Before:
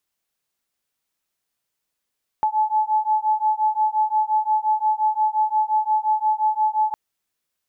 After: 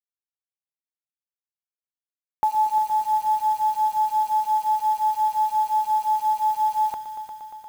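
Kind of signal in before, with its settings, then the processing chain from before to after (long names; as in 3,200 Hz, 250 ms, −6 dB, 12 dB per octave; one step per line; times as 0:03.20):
two tones that beat 859 Hz, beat 5.7 Hz, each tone −20.5 dBFS 4.51 s
bit reduction 7 bits
echo machine with several playback heads 117 ms, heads all three, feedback 69%, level −15 dB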